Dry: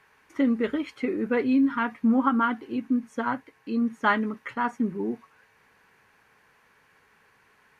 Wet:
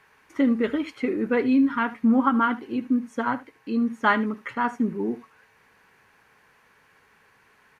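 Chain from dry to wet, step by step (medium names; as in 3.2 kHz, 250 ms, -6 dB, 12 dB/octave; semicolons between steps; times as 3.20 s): delay 75 ms -17.5 dB; trim +2 dB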